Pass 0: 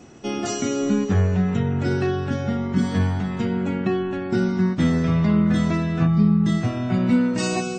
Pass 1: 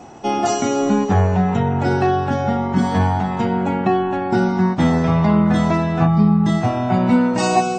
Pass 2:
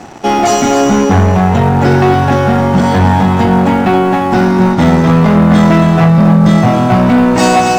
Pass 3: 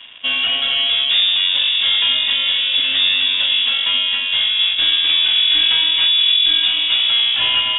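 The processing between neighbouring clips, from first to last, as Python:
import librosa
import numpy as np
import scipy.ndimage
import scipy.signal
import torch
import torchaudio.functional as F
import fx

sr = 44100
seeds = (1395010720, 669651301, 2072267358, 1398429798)

y1 = fx.peak_eq(x, sr, hz=820.0, db=15.0, octaves=0.75)
y1 = y1 * 10.0 ** (2.5 / 20.0)
y2 = fx.leveller(y1, sr, passes=3)
y2 = y2 + 10.0 ** (-7.0 / 20.0) * np.pad(y2, (int(274 * sr / 1000.0), 0))[:len(y2)]
y3 = fx.freq_invert(y2, sr, carrier_hz=3600)
y3 = y3 * 10.0 ** (-8.0 / 20.0)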